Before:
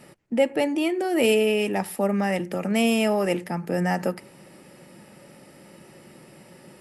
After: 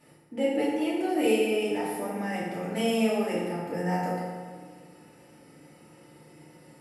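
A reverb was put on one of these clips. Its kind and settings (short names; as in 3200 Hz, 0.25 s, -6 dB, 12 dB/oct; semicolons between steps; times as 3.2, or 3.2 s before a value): FDN reverb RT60 1.7 s, low-frequency decay 0.95×, high-frequency decay 0.6×, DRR -8.5 dB; gain -14 dB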